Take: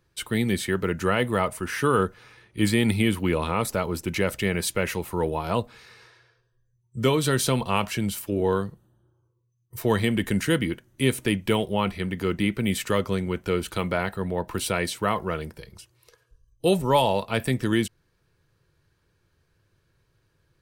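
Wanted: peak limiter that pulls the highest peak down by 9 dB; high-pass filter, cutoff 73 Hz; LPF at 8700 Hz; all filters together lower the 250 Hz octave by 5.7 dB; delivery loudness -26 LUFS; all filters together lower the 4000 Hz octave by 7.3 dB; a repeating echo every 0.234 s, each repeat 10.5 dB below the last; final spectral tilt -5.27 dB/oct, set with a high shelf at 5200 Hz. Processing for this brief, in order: HPF 73 Hz; LPF 8700 Hz; bell 250 Hz -8 dB; bell 4000 Hz -7.5 dB; high shelf 5200 Hz -7 dB; limiter -19 dBFS; feedback echo 0.234 s, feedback 30%, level -10.5 dB; gain +5.5 dB

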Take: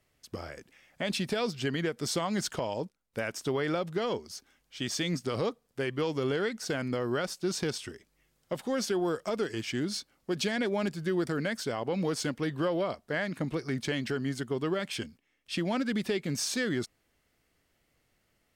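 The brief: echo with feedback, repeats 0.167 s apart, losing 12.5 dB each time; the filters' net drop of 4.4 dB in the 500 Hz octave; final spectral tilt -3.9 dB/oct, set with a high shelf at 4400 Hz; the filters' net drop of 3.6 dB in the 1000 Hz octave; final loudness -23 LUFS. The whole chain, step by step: bell 500 Hz -5 dB; bell 1000 Hz -3.5 dB; high shelf 4400 Hz +3.5 dB; feedback echo 0.167 s, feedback 24%, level -12.5 dB; gain +10.5 dB

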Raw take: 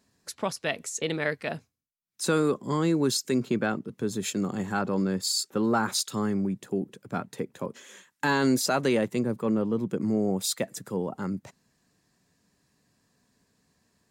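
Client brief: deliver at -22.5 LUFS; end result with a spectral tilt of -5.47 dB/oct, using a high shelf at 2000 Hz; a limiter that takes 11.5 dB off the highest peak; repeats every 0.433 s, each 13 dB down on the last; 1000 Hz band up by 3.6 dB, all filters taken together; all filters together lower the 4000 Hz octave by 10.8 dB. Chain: bell 1000 Hz +7 dB; high shelf 2000 Hz -8 dB; bell 4000 Hz -5.5 dB; limiter -23 dBFS; feedback echo 0.433 s, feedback 22%, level -13 dB; gain +11 dB

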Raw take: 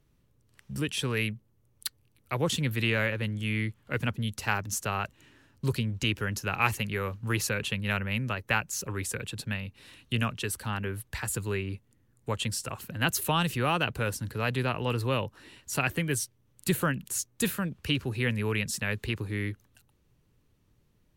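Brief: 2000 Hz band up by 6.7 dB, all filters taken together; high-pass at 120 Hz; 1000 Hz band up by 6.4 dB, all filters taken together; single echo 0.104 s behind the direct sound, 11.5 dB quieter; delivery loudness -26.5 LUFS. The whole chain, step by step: HPF 120 Hz; bell 1000 Hz +6 dB; bell 2000 Hz +7 dB; echo 0.104 s -11.5 dB; gain +0.5 dB

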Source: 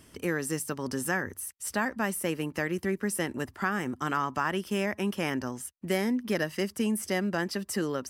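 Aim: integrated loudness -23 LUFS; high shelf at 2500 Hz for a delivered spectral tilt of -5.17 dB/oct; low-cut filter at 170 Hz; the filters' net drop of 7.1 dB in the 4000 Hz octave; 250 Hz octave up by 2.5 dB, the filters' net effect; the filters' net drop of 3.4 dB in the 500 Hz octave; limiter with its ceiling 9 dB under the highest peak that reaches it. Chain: HPF 170 Hz; bell 250 Hz +6.5 dB; bell 500 Hz -7 dB; high shelf 2500 Hz -3.5 dB; bell 4000 Hz -7.5 dB; gain +11.5 dB; limiter -14 dBFS

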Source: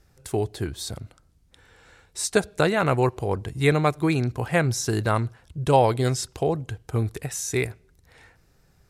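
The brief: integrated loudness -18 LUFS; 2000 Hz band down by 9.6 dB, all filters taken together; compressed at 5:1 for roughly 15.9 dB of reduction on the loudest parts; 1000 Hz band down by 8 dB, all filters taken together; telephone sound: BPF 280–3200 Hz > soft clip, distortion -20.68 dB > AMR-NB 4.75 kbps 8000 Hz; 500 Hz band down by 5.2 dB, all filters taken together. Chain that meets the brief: bell 500 Hz -3.5 dB; bell 1000 Hz -7.5 dB; bell 2000 Hz -9 dB; compressor 5:1, threshold -36 dBFS; BPF 280–3200 Hz; soft clip -30 dBFS; gain +29 dB; AMR-NB 4.75 kbps 8000 Hz

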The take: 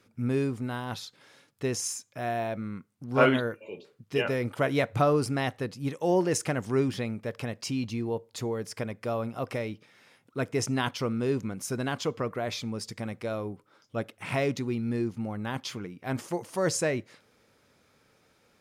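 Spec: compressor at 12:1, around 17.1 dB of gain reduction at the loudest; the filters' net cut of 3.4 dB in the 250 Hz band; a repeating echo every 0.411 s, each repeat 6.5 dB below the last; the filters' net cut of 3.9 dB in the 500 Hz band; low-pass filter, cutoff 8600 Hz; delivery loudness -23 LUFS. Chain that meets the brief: LPF 8600 Hz; bell 250 Hz -3 dB; bell 500 Hz -4 dB; compressor 12:1, threshold -35 dBFS; feedback echo 0.411 s, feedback 47%, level -6.5 dB; gain +17 dB

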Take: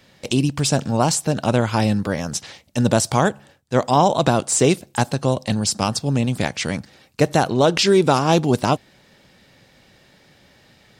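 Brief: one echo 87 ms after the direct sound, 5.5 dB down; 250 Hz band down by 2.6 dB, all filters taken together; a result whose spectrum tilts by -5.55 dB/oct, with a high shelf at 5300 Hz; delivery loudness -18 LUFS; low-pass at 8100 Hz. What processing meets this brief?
LPF 8100 Hz; bell 250 Hz -3.5 dB; high shelf 5300 Hz -8.5 dB; echo 87 ms -5.5 dB; gain +2 dB

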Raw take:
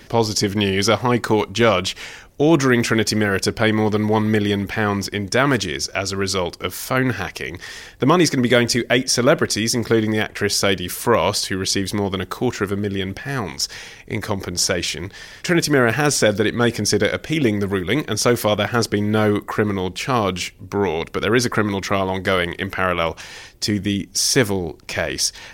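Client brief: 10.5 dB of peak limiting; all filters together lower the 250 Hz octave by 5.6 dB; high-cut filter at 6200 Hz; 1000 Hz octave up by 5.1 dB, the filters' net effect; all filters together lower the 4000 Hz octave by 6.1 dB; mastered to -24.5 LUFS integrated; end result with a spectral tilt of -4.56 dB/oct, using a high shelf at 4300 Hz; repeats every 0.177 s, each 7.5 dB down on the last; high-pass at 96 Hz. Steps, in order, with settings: HPF 96 Hz; LPF 6200 Hz; bell 250 Hz -8 dB; bell 1000 Hz +7.5 dB; bell 4000 Hz -3.5 dB; high shelf 4300 Hz -6.5 dB; limiter -9.5 dBFS; feedback echo 0.177 s, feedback 42%, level -7.5 dB; gain -1.5 dB

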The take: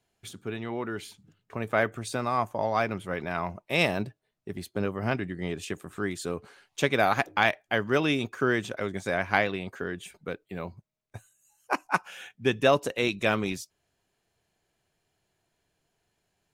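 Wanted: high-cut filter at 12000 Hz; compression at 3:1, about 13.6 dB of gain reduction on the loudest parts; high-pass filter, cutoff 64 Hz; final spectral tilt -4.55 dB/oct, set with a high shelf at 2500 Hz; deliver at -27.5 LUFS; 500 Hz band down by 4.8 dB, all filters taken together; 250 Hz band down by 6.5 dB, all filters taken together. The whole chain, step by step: HPF 64 Hz; LPF 12000 Hz; bell 250 Hz -7.5 dB; bell 500 Hz -4 dB; high shelf 2500 Hz -5 dB; compressor 3:1, threshold -39 dBFS; gain +15 dB

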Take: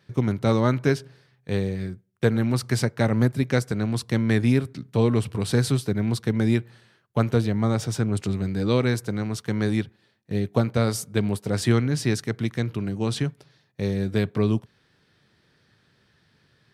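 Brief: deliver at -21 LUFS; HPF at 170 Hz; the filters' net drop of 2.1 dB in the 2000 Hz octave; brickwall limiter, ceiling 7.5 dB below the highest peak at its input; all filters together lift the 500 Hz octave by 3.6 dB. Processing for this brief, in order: HPF 170 Hz; bell 500 Hz +4.5 dB; bell 2000 Hz -3 dB; gain +6 dB; limiter -8.5 dBFS

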